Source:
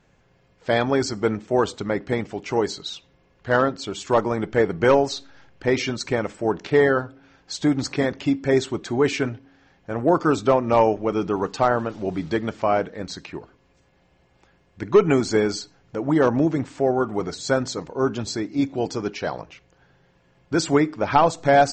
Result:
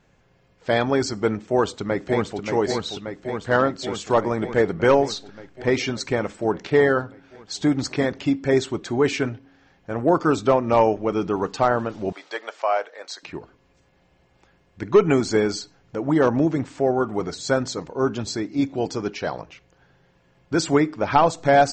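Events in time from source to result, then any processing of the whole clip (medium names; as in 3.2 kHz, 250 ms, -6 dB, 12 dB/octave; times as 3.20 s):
1.33–2.40 s: echo throw 580 ms, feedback 75%, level -6 dB
12.12–13.23 s: high-pass 550 Hz 24 dB/octave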